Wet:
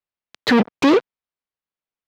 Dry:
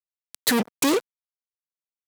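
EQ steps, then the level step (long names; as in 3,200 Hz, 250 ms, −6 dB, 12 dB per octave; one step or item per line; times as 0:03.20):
high-frequency loss of the air 240 metres
+8.0 dB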